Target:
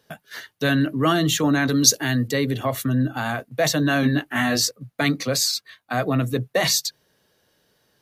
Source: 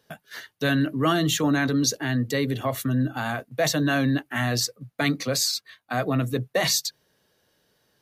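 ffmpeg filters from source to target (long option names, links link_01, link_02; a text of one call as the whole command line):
ffmpeg -i in.wav -filter_complex "[0:a]asettb=1/sr,asplit=3[link_01][link_02][link_03];[link_01]atrim=end=1.694[link_04];[link_02]atrim=start=1.69:end=2.28,asetpts=PTS-STARTPTS,afade=type=in:duration=0.004:curve=qsin,afade=type=out:start_time=0.586:duration=0.004:curve=qsin,highshelf=frequency=3900:gain=10[link_05];[link_03]atrim=start=2.276[link_06];[link_04][link_05]acrossfade=duration=0.004:curve1=hsin:curve2=qsin[link_07];[link_07][link_06]acrossfade=duration=0.004:curve1=qsin:curve2=hsin,asettb=1/sr,asplit=3[link_08][link_09][link_10];[link_08]atrim=end=4.014[link_11];[link_09]atrim=start=4.01:end=4.71,asetpts=PTS-STARTPTS,afade=type=in:duration=0.004:curve=qsin,afade=type=out:start_time=0.696:duration=0.004:curve=qsin,asplit=2[link_12][link_13];[link_13]adelay=20,volume=-2.5dB[link_14];[link_12][link_14]amix=inputs=2:normalize=0,atrim=end_sample=30870[link_15];[link_10]atrim=start=4.706[link_16];[link_11][link_15]acrossfade=duration=0.004:curve1=hsin:curve2=qsin[link_17];[link_17][link_16]acrossfade=duration=0.004:curve1=qsin:curve2=hsin,volume=2.5dB" out.wav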